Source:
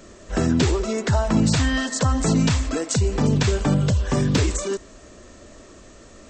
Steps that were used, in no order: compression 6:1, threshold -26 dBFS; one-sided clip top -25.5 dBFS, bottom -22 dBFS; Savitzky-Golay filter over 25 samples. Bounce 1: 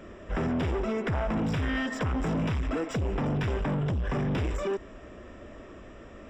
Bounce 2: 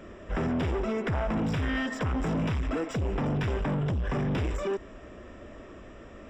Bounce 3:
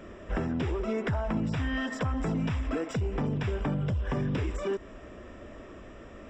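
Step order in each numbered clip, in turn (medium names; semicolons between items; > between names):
one-sided clip > Savitzky-Golay filter > compression; one-sided clip > compression > Savitzky-Golay filter; compression > one-sided clip > Savitzky-Golay filter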